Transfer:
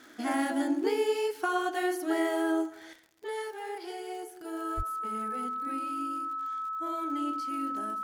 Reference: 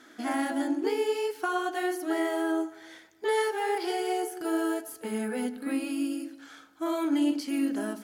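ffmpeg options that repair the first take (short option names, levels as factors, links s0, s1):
-filter_complex "[0:a]adeclick=t=4,bandreject=f=1300:w=30,asplit=3[s0][s1][s2];[s0]afade=t=out:st=4.76:d=0.02[s3];[s1]highpass=f=140:w=0.5412,highpass=f=140:w=1.3066,afade=t=in:st=4.76:d=0.02,afade=t=out:st=4.88:d=0.02[s4];[s2]afade=t=in:st=4.88:d=0.02[s5];[s3][s4][s5]amix=inputs=3:normalize=0,asetnsamples=n=441:p=0,asendcmd='2.93 volume volume 9.5dB',volume=1"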